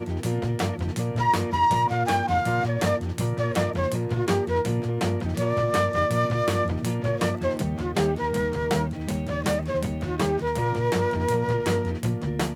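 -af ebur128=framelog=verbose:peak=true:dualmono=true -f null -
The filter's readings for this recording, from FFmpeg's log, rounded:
Integrated loudness:
  I:         -22.0 LUFS
  Threshold: -32.0 LUFS
Loudness range:
  LRA:         2.1 LU
  Threshold: -42.0 LUFS
  LRA low:   -23.1 LUFS
  LRA high:  -21.1 LUFS
True peak:
  Peak:       -9.6 dBFS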